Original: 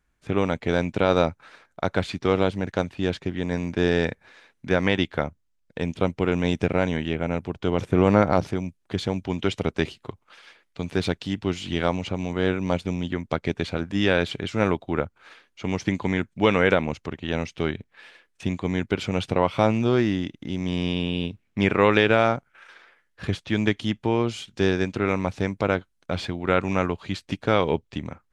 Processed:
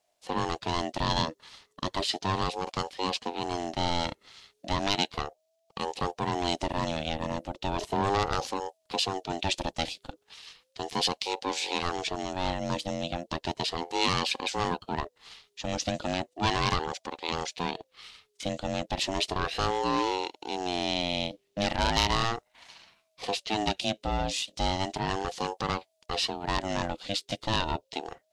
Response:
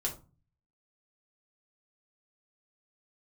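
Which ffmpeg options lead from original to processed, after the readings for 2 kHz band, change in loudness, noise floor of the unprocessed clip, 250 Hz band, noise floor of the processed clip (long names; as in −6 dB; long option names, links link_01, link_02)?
−7.0 dB, −6.0 dB, −70 dBFS, −10.0 dB, −75 dBFS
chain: -af "asoftclip=type=tanh:threshold=-14dB,highshelf=frequency=2700:width_type=q:width=1.5:gain=10.5,aeval=exprs='val(0)*sin(2*PI*530*n/s+530*0.25/0.35*sin(2*PI*0.35*n/s))':channel_layout=same,volume=-2dB"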